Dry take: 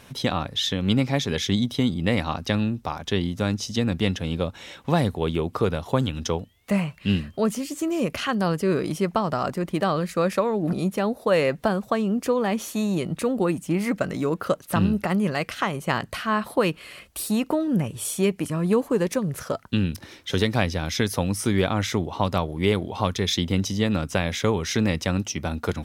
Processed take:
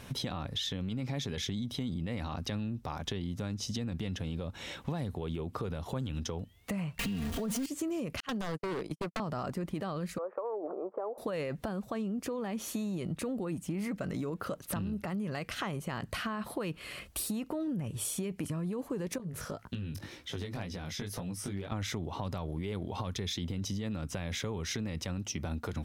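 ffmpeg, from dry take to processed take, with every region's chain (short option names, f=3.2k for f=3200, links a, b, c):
-filter_complex "[0:a]asettb=1/sr,asplit=3[a][b][c];[a]atrim=end=6.994[d];[b]atrim=start=6.99:end=7.66,asetpts=PTS-STARTPTS,afade=t=in:d=0.004:c=qsin,afade=t=out:st=0.666:d=0.004:c=qsin,aeval=exprs='val(0)+0.5*0.0596*sgn(val(0))':c=same,aecho=1:1:4.3:0.97,atrim=end_sample=29547[e];[c]atrim=start=7.656[f];[d][e]acrossfade=d=0.004:c1=hsin:c2=qsin[g];[g][f]acrossfade=d=0.004:c1=qsin:c2=hsin,asettb=1/sr,asplit=3[h][i][j];[h]atrim=end=8.204[k];[i]atrim=start=8.2:end=9.2,asetpts=PTS-STARTPTS,afade=t=in:d=0.004:c=qsin,afade=t=out:st=0.996:d=0.004:c=qsin,agate=range=-56dB:threshold=-26dB:ratio=16:release=100:detection=peak,acrossover=split=320|1900[l][m][n];[l]acompressor=threshold=-33dB:ratio=4[o];[m]acompressor=threshold=-25dB:ratio=4[p];[n]acompressor=threshold=-41dB:ratio=4[q];[o][p][q]amix=inputs=3:normalize=0,aeval=exprs='0.0631*(abs(mod(val(0)/0.0631+3,4)-2)-1)':c=same[r];[j]atrim=start=9.196[s];[k][r]acrossfade=d=0.004:c1=hsin:c2=qsin[t];[t][s]acrossfade=d=0.004:c1=qsin:c2=hsin,asettb=1/sr,asplit=3[u][v][w];[u]atrim=end=10.184[x];[v]atrim=start=10.18:end=11.18,asetpts=PTS-STARTPTS,afade=t=in:d=0.004:c=qsin,afade=t=out:st=0.996:d=0.004:c=qsin,asuperpass=centerf=690:order=8:qfactor=0.84,acompressor=threshold=-28dB:ratio=4:attack=3.2:release=140:knee=1:detection=peak[y];[w]atrim=start=11.176[z];[x][y]acrossfade=d=0.004:c1=hsin:c2=qsin[aa];[aa][z]acrossfade=d=0.004:c1=qsin:c2=hsin,asettb=1/sr,asplit=3[ab][ac][ad];[ab]atrim=end=19.184[ae];[ac]atrim=start=19.18:end=21.72,asetpts=PTS-STARTPTS,afade=t=in:d=0.004:c=qsin,afade=t=out:st=2.536:d=0.004:c=qsin,acompressor=threshold=-32dB:ratio=5:attack=3.2:release=140:knee=1:detection=peak,flanger=delay=16:depth=4.9:speed=1.9,asoftclip=type=hard:threshold=-26.5dB[af];[ad]atrim=start=21.716[ag];[ae][af]acrossfade=d=0.004:c1=hsin:c2=qsin[ah];[ah][ag]acrossfade=d=0.004:c1=qsin:c2=hsin,lowshelf=f=240:g=6,alimiter=limit=-17.5dB:level=0:latency=1:release=24,acompressor=threshold=-31dB:ratio=6,volume=-1.5dB"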